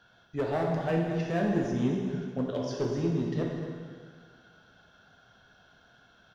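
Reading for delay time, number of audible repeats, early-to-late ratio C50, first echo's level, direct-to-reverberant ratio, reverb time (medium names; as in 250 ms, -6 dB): 239 ms, 1, 1.0 dB, -11.5 dB, -1.5 dB, 1.9 s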